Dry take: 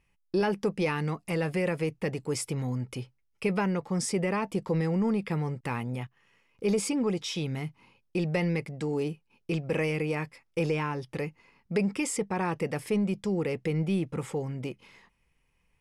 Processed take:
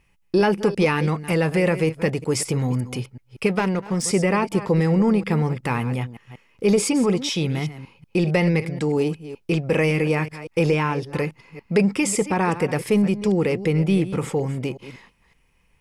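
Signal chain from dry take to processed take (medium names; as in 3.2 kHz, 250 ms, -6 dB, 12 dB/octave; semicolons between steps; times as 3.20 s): chunks repeated in reverse 187 ms, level -13 dB; 3.46–4.04 s: power-law waveshaper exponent 1.4; trim +8.5 dB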